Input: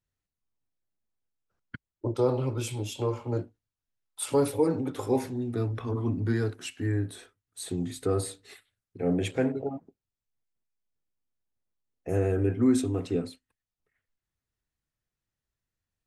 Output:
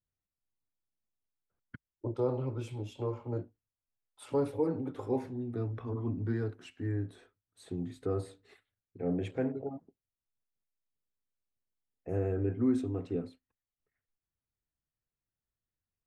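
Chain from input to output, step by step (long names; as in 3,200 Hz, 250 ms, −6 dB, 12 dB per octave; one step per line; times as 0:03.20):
low-pass filter 1,400 Hz 6 dB per octave
level −5.5 dB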